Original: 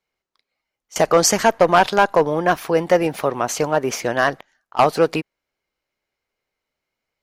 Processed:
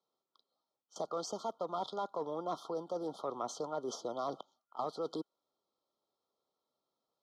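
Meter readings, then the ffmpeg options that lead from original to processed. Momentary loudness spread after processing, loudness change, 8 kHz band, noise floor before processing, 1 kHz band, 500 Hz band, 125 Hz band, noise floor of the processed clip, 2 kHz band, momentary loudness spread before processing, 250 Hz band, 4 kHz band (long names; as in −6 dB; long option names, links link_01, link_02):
6 LU, −21.5 dB, −25.5 dB, −83 dBFS, −21.0 dB, −21.0 dB, −25.5 dB, below −85 dBFS, below −35 dB, 8 LU, −20.5 dB, −21.5 dB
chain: -filter_complex "[0:a]afftfilt=real='re*(1-between(b*sr/4096,1400,3100))':imag='im*(1-between(b*sr/4096,1400,3100))':win_size=4096:overlap=0.75,areverse,acompressor=threshold=-27dB:ratio=10,areverse,highpass=200,lowpass=4600,acrossover=split=260|1200[link_01][link_02][link_03];[link_01]acompressor=threshold=-49dB:ratio=4[link_04];[link_02]acompressor=threshold=-34dB:ratio=4[link_05];[link_03]acompressor=threshold=-40dB:ratio=4[link_06];[link_04][link_05][link_06]amix=inputs=3:normalize=0,volume=-2.5dB"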